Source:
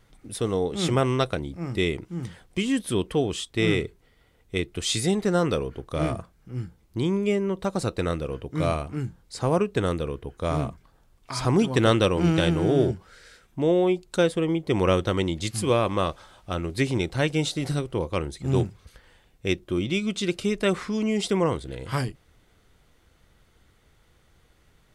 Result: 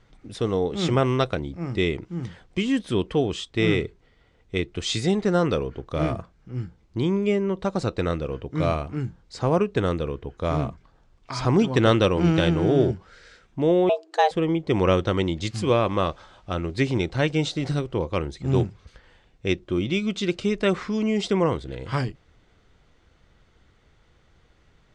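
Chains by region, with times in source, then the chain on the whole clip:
13.89–14.31 s: frequency shift +290 Hz + careless resampling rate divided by 2×, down none, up hold + tape noise reduction on one side only decoder only
whole clip: low-pass 7.3 kHz 24 dB/octave; treble shelf 4.9 kHz -5 dB; trim +1.5 dB

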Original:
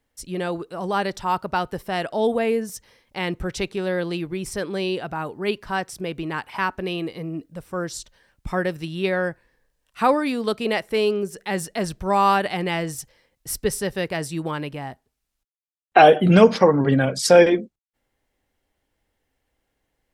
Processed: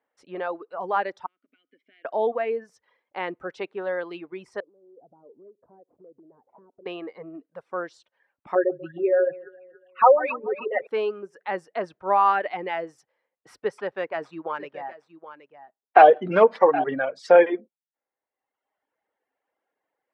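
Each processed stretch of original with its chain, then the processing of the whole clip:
1.26–2.05 s: tilt EQ +2.5 dB/octave + compression 5:1, threshold -32 dBFS + vowel filter i
4.60–6.86 s: CVSD coder 32 kbps + Chebyshev low-pass 510 Hz, order 3 + compression, threshold -42 dBFS
8.55–10.87 s: resonances exaggerated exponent 3 + comb 5.4 ms, depth 87% + echo whose repeats swap between lows and highs 141 ms, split 880 Hz, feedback 58%, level -8 dB
13.78–16.84 s: delay 771 ms -12.5 dB + sliding maximum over 3 samples
whole clip: low-pass 1.5 kHz 12 dB/octave; reverb removal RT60 1.1 s; high-pass 520 Hz 12 dB/octave; trim +2 dB

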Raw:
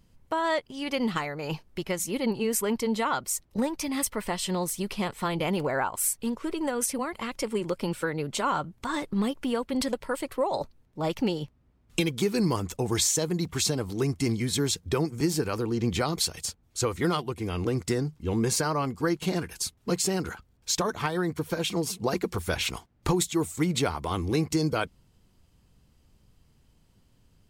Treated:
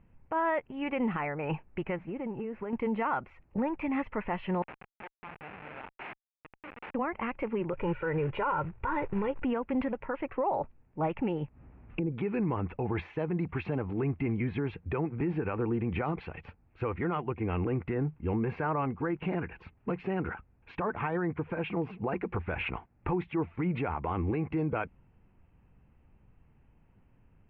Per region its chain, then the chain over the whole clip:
1.96–2.73 s: block-companded coder 5-bit + treble shelf 2.2 kHz -11 dB + compression 10:1, threshold -32 dBFS
4.62–6.95 s: feedback comb 150 Hz, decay 0.42 s, mix 80% + Schmitt trigger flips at -34 dBFS + tilt EQ +4.5 dB/octave
7.73–9.45 s: bass shelf 200 Hz +6.5 dB + comb 2.1 ms, depth 82% + short-mantissa float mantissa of 2-bit
11.41–12.12 s: low-pass that closes with the level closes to 480 Hz, closed at -23.5 dBFS + upward compressor, threshold -40 dBFS
whole clip: Chebyshev low-pass 2.6 kHz, order 5; peak limiter -23 dBFS; peaking EQ 830 Hz +5 dB 0.34 oct

